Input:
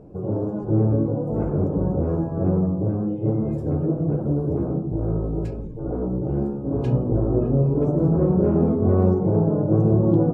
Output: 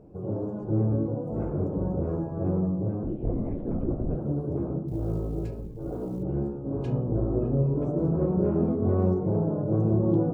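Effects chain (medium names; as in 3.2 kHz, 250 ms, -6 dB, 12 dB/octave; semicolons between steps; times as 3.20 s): 3.03–4.16 s: LPC vocoder at 8 kHz whisper; 4.88–6.23 s: companded quantiser 8-bit; de-hum 62.99 Hz, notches 33; on a send: reverberation RT60 0.60 s, pre-delay 3 ms, DRR 20 dB; on the sum: trim -5.5 dB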